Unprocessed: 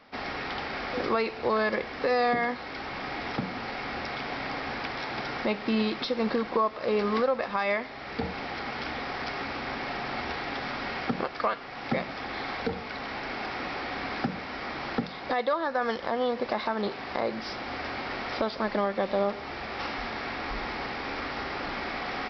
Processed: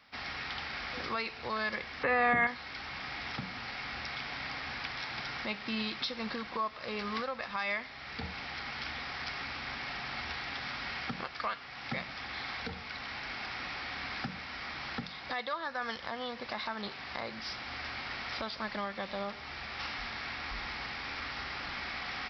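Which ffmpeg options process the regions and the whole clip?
ffmpeg -i in.wav -filter_complex "[0:a]asettb=1/sr,asplit=3[link_01][link_02][link_03];[link_01]atrim=end=2.034[link_04];[link_02]atrim=start=2.03:end=2.47,asetpts=PTS-STARTPTS,afade=type=in:duration=0.004:curve=qsin,afade=type=out:start_time=0.436:duration=0.004:curve=qsin,lowpass=frequency=2500:width=0.5412,lowpass=frequency=2500:width=1.3066,acontrast=88[link_05];[link_03]atrim=start=2.466[link_06];[link_04][link_05]acrossfade=duration=0.004:curve1=hsin:curve2=qsin[link_07];[link_07][link_06]acrossfade=duration=0.004:curve1=qsin:curve2=hsin,highpass=49,equalizer=frequency=410:width_type=o:width=2.6:gain=-15" out.wav

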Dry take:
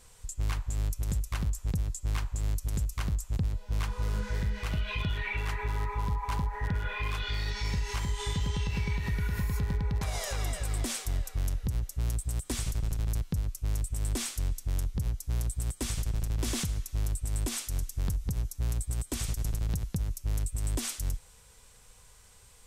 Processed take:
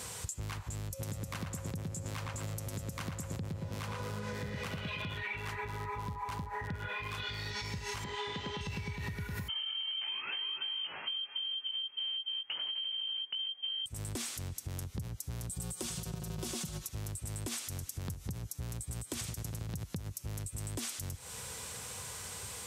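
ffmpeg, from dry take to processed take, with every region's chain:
ffmpeg -i in.wav -filter_complex "[0:a]asettb=1/sr,asplit=3[link_01][link_02][link_03];[link_01]atrim=end=0.934[link_04];[link_02]atrim=start=0.93:end=5.14,asetpts=PTS-STARTPTS,afade=type=in:duration=0.004:curve=qsin,afade=type=out:start_time=4.206:duration=0.004:curve=qsin,highpass=100,aeval=exprs='val(0)+0.00398*sin(2*PI*540*n/s)':channel_layout=same,asplit=2[link_05][link_06];[link_06]adelay=114,lowpass=frequency=2700:poles=1,volume=-3.5dB,asplit=2[link_07][link_08];[link_08]adelay=114,lowpass=frequency=2700:poles=1,volume=0.48,asplit=2[link_09][link_10];[link_10]adelay=114,lowpass=frequency=2700:poles=1,volume=0.48,asplit=2[link_11][link_12];[link_12]adelay=114,lowpass=frequency=2700:poles=1,volume=0.48,asplit=2[link_13][link_14];[link_14]adelay=114,lowpass=frequency=2700:poles=1,volume=0.48,asplit=2[link_15][link_16];[link_16]adelay=114,lowpass=frequency=2700:poles=1,volume=0.48[link_17];[link_05][link_07][link_09][link_11][link_13][link_15][link_17]amix=inputs=7:normalize=0,atrim=end_sample=185661[link_18];[link_03]atrim=start=5.136[link_19];[link_04][link_18]acrossfade=duration=0.004:curve1=hsin:curve2=qsin[link_20];[link_20][link_19]acrossfade=duration=0.004:curve1=qsin:curve2=hsin,asettb=1/sr,asplit=3[link_21][link_22][link_23];[link_21]atrim=end=8.044[link_24];[link_22]atrim=start=8.04:end=8.61,asetpts=PTS-STARTPTS,afade=type=in:duration=0.004:curve=qsin,afade=type=out:start_time=0.566:duration=0.004:curve=qsin,acrossover=split=4800[link_25][link_26];[link_26]acompressor=threshold=-50dB:ratio=4:attack=1:release=60[link_27];[link_25][link_27]amix=inputs=2:normalize=0,acrossover=split=220 4900:gain=0.158 1 0.112[link_28][link_29][link_30];[link_28][link_29][link_30]amix=inputs=3:normalize=0[link_31];[link_23]atrim=start=8.606[link_32];[link_24][link_31]acrossfade=duration=0.004:curve1=hsin:curve2=qsin[link_33];[link_33][link_32]acrossfade=duration=0.004:curve1=qsin:curve2=hsin,asettb=1/sr,asplit=3[link_34][link_35][link_36];[link_34]atrim=end=9.484[link_37];[link_35]atrim=start=9.48:end=13.86,asetpts=PTS-STARTPTS,afade=type=in:duration=0.004:curve=qsin,afade=type=out:start_time=4.376:duration=0.004:curve=qsin,flanger=delay=18.5:depth=2.7:speed=1.4,lowpass=frequency=2700:width_type=q:width=0.5098,lowpass=frequency=2700:width_type=q:width=0.6013,lowpass=frequency=2700:width_type=q:width=0.9,lowpass=frequency=2700:width_type=q:width=2.563,afreqshift=-3200[link_38];[link_36]atrim=start=13.856[link_39];[link_37][link_38]acrossfade=duration=0.004:curve1=hsin:curve2=qsin[link_40];[link_40][link_39]acrossfade=duration=0.004:curve1=qsin:curve2=hsin,asettb=1/sr,asplit=3[link_41][link_42][link_43];[link_41]atrim=end=15.494[link_44];[link_42]atrim=start=15.49:end=16.89,asetpts=PTS-STARTPTS,afade=type=in:duration=0.004:curve=qsin,afade=type=out:start_time=1.396:duration=0.004:curve=qsin,equalizer=frequency=2000:width=2.3:gain=-6,aecho=1:1:5.5:0.84,atrim=end_sample=61740,acontrast=57[link_45];[link_43]atrim=start=16.886[link_46];[link_44][link_45]acrossfade=duration=0.004:curve1=hsin:curve2=qsin[link_47];[link_47][link_46]acrossfade=duration=0.004:curve1=qsin:curve2=hsin,alimiter=level_in=5dB:limit=-24dB:level=0:latency=1:release=101,volume=-5dB,highpass=frequency=83:width=0.5412,highpass=frequency=83:width=1.3066,acompressor=threshold=-53dB:ratio=6,volume=15.5dB" out.wav

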